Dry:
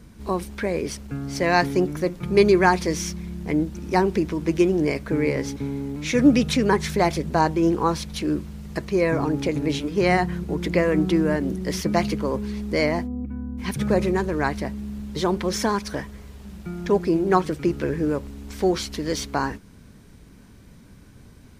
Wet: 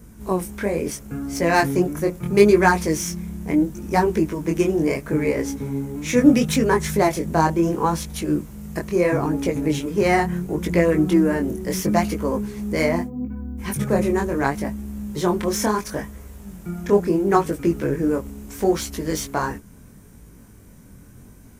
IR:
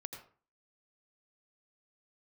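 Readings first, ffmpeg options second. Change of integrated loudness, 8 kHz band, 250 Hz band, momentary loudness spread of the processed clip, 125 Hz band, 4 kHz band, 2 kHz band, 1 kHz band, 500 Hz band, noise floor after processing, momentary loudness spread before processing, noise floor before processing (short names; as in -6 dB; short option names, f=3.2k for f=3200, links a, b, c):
+2.0 dB, +4.5 dB, +2.0 dB, 12 LU, +1.5 dB, -1.5 dB, +1.0 dB, +1.5 dB, +2.0 dB, -46 dBFS, 11 LU, -48 dBFS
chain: -filter_complex "[0:a]asplit=2[a][b];[b]adynamicsmooth=sensitivity=1.5:basefreq=3k,volume=0.5dB[c];[a][c]amix=inputs=2:normalize=0,flanger=delay=17.5:depth=7.2:speed=0.74,aexciter=amount=5.8:drive=1.3:freq=6k,volume=-1.5dB"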